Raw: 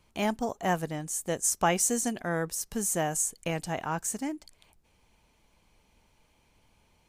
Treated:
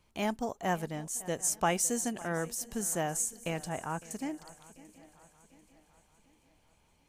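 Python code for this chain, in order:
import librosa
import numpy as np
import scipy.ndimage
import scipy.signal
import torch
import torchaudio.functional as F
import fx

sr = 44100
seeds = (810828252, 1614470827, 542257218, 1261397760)

y = fx.air_absorb(x, sr, metres=230.0, at=(3.69, 4.11))
y = fx.echo_swing(y, sr, ms=741, ratio=3, feedback_pct=44, wet_db=-19.5)
y = y * 10.0 ** (-3.5 / 20.0)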